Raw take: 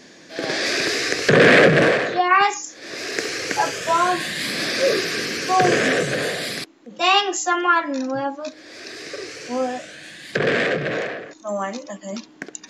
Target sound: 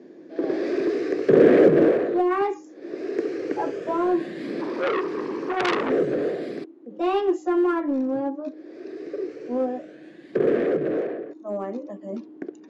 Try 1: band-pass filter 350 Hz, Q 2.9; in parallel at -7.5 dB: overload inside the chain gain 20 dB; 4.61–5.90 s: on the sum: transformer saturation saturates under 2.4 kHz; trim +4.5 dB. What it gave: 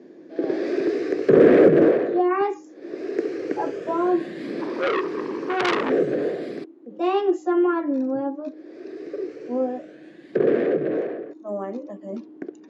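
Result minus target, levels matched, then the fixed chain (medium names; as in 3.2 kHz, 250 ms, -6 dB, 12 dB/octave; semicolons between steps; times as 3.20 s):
overload inside the chain: distortion -7 dB
band-pass filter 350 Hz, Q 2.9; in parallel at -7.5 dB: overload inside the chain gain 30 dB; 4.61–5.90 s: on the sum: transformer saturation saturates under 2.4 kHz; trim +4.5 dB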